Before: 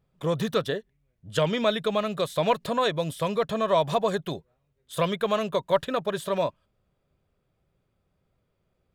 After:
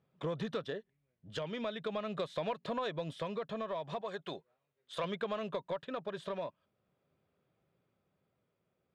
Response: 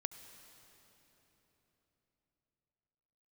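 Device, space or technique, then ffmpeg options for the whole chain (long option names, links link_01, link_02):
AM radio: -filter_complex "[0:a]asettb=1/sr,asplit=3[link_01][link_02][link_03];[link_01]atrim=end=4.014[link_04];[link_02]atrim=start=4.01:end=5.04,asetpts=PTS-STARTPTS,afade=type=in:duration=0.004:curve=qsin,afade=type=out:start_time=1.026:duration=0.004:curve=qsin,lowshelf=frequency=310:gain=-12[link_05];[link_03]atrim=start=5.036[link_06];[link_04][link_05]acrossfade=duration=0.004:curve1=hsin:curve2=qsin[link_07];[link_07][link_06]acrossfade=duration=0.004:curve1=qsin:curve2=hsin,highpass=140,lowpass=4000,acompressor=threshold=-30dB:ratio=6,asoftclip=type=tanh:threshold=-22dB,tremolo=f=0.4:d=0.29,volume=-2dB"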